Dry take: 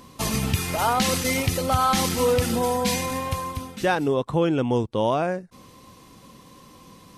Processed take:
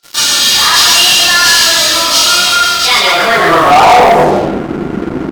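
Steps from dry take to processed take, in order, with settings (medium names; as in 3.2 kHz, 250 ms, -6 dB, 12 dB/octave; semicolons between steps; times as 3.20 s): chunks repeated in reverse 183 ms, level -11 dB; in parallel at -1 dB: compressor with a negative ratio -32 dBFS, ratio -1; on the sum: band-pass sweep 3.3 kHz -> 230 Hz, 3.82–5.81 s; frequency-shifting echo 173 ms, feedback 49%, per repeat -34 Hz, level -3 dB; reverberation RT60 0.55 s, pre-delay 28 ms, DRR -9.5 dB; waveshaping leveller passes 5; speed mistake 33 rpm record played at 45 rpm; trim -1 dB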